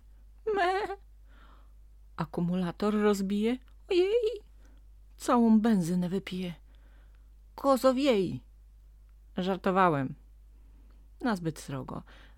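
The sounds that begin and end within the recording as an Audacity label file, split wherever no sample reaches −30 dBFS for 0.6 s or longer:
2.190000	4.290000	sound
5.240000	6.490000	sound
7.580000	8.350000	sound
9.380000	10.070000	sound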